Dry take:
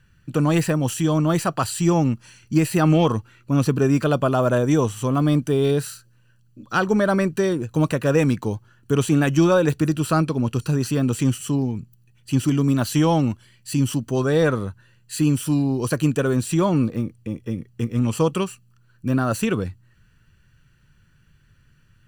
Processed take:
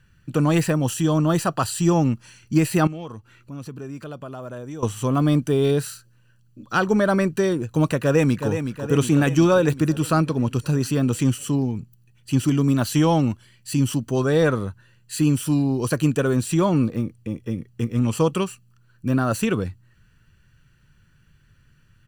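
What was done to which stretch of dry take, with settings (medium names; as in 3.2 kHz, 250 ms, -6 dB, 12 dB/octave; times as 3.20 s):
0.83–2.04 s: band-stop 2.2 kHz, Q 6.8
2.87–4.83 s: compression 2:1, threshold -45 dBFS
7.97–8.49 s: echo throw 370 ms, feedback 65%, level -8 dB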